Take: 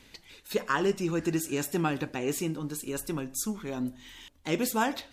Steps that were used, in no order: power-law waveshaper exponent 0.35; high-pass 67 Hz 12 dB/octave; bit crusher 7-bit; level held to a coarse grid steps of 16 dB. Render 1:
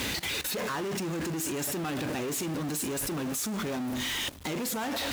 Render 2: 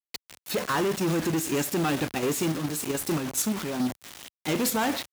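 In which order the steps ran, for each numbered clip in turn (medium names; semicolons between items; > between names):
power-law waveshaper > bit crusher > high-pass > level held to a coarse grid; bit crusher > level held to a coarse grid > power-law waveshaper > high-pass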